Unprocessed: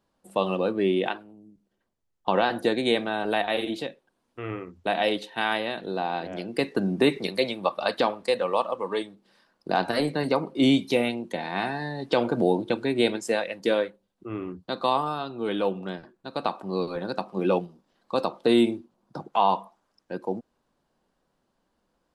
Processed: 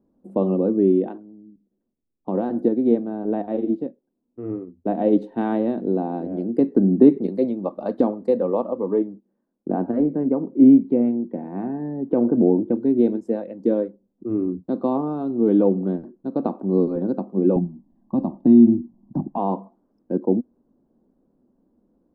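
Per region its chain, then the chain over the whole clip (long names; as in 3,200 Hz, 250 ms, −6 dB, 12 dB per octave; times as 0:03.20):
0:02.68–0:05.13: high-shelf EQ 4,000 Hz −10 dB + expander for the loud parts, over −47 dBFS
0:08.86–0:12.76: noise gate −58 dBFS, range −13 dB + low-pass filter 2,600 Hz 24 dB per octave
0:17.56–0:19.38: spectral tilt −2.5 dB per octave + comb filter 1.1 ms, depth 90% + downward compressor 2 to 1, threshold −19 dBFS
whole clip: drawn EQ curve 140 Hz 0 dB, 250 Hz +12 dB, 2,800 Hz −27 dB; speech leveller 2 s; level −1 dB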